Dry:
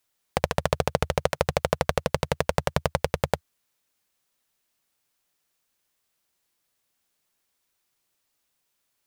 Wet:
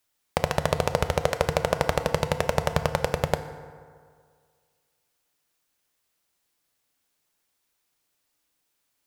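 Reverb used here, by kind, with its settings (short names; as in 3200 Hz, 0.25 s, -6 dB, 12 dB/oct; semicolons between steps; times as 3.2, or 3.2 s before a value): FDN reverb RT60 2 s, low-frequency decay 0.9×, high-frequency decay 0.5×, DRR 8.5 dB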